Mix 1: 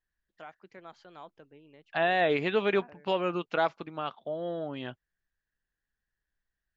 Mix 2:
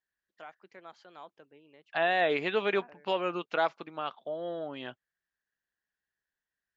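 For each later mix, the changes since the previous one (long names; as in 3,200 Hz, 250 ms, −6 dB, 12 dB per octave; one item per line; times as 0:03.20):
master: add high-pass filter 350 Hz 6 dB per octave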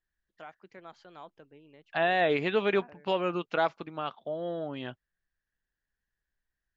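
master: remove high-pass filter 350 Hz 6 dB per octave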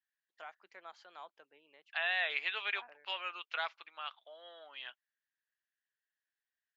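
second voice: add resonant band-pass 2,800 Hz, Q 1
master: add high-pass filter 790 Hz 12 dB per octave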